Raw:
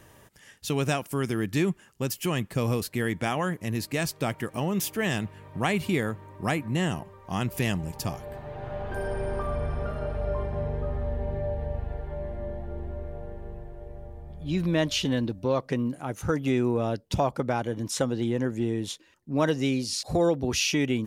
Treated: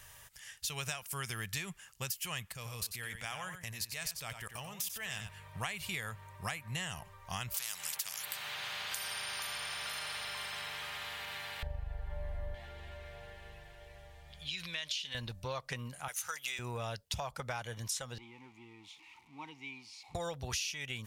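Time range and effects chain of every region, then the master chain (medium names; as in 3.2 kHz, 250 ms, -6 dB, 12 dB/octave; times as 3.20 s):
2.52–5.29 s: level held to a coarse grid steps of 18 dB + delay 92 ms -8.5 dB
7.54–11.63 s: high-pass 220 Hz 24 dB/octave + spectrum-flattening compressor 4:1
12.54–15.15 s: frequency weighting D + compression 2.5:1, threshold -36 dBFS
16.08–16.59 s: high-pass 1.1 kHz 6 dB/octave + tilt EQ +2 dB/octave
18.18–20.15 s: jump at every zero crossing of -34 dBFS + vowel filter u
whole clip: amplifier tone stack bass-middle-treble 10-0-10; compression 10:1, threshold -40 dBFS; trim +5.5 dB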